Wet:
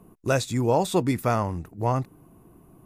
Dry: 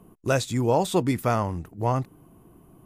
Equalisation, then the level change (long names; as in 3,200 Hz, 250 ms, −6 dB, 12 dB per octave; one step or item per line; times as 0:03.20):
notch filter 3,100 Hz, Q 12
0.0 dB